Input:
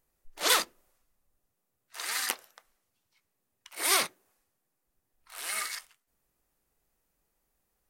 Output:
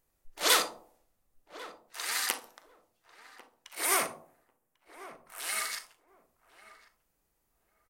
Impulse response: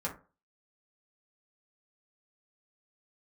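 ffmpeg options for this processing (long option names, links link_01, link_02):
-filter_complex "[0:a]asettb=1/sr,asplit=3[link_01][link_02][link_03];[link_01]atrim=end=3.854[link_04];[link_02]atrim=start=3.85:end=5.4,asetpts=PTS-STARTPTS,afade=type=in:duration=0.004:curve=qsin,afade=type=out:start_time=1.546:duration=0.004:curve=qsin,equalizer=frequency=4100:width_type=o:width=0.93:gain=-12[link_05];[link_03]atrim=start=5.396[link_06];[link_04][link_05]acrossfade=duration=0.004:curve1=hsin:curve2=qsin[link_07];[link_07][link_06]acrossfade=duration=0.004:curve1=qsin:curve2=hsin,asplit=2[link_08][link_09];[link_09]adelay=1095,lowpass=frequency=1000:poles=1,volume=-13.5dB,asplit=2[link_10][link_11];[link_11]adelay=1095,lowpass=frequency=1000:poles=1,volume=0.18[link_12];[link_08][link_10][link_12]amix=inputs=3:normalize=0,asplit=2[link_13][link_14];[1:a]atrim=start_sample=2205,asetrate=24255,aresample=44100,adelay=38[link_15];[link_14][link_15]afir=irnorm=-1:irlink=0,volume=-15dB[link_16];[link_13][link_16]amix=inputs=2:normalize=0"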